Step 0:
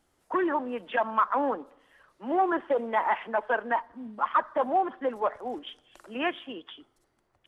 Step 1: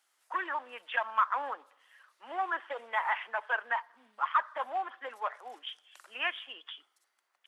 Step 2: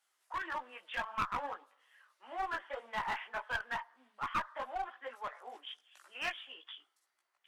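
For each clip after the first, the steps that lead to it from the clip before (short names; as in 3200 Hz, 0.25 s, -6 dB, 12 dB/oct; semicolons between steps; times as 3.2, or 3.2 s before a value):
HPF 1300 Hz 12 dB/oct; gain +1.5 dB
chorus voices 6, 1.5 Hz, delay 18 ms, depth 3 ms; one-sided clip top -33.5 dBFS; gain -1.5 dB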